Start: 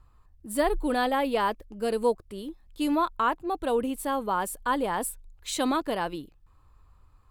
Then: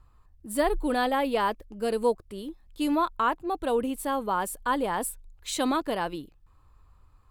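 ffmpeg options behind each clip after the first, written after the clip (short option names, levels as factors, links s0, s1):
-af anull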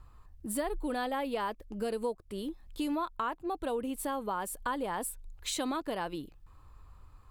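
-af "acompressor=threshold=0.0126:ratio=3,volume=1.5"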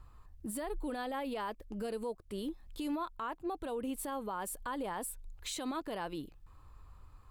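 -af "alimiter=level_in=1.78:limit=0.0631:level=0:latency=1:release=50,volume=0.562,volume=0.891"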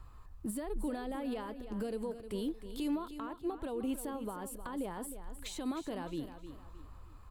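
-filter_complex "[0:a]acrossover=split=410[s0][s1];[s1]acompressor=threshold=0.00501:ratio=6[s2];[s0][s2]amix=inputs=2:normalize=0,aecho=1:1:309|618|927|1236:0.282|0.101|0.0365|0.0131,volume=1.41"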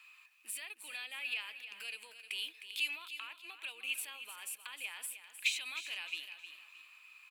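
-af "highpass=f=2500:t=q:w=12,aecho=1:1:395:0.0944,volume=1.58"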